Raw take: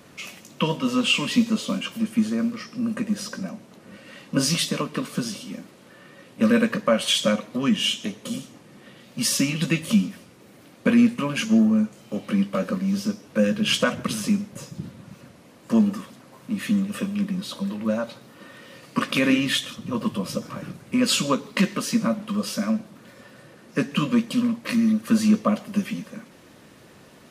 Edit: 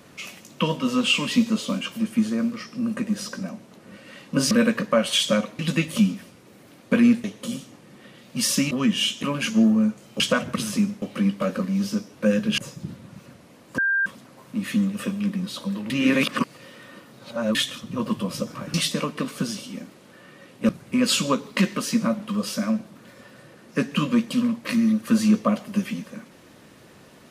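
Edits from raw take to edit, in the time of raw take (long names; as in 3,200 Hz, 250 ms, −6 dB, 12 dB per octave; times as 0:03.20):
0:04.51–0:06.46: move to 0:20.69
0:07.54–0:08.06: swap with 0:09.53–0:11.18
0:13.71–0:14.53: move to 0:12.15
0:15.73–0:16.01: beep over 1,590 Hz −18.5 dBFS
0:17.85–0:19.50: reverse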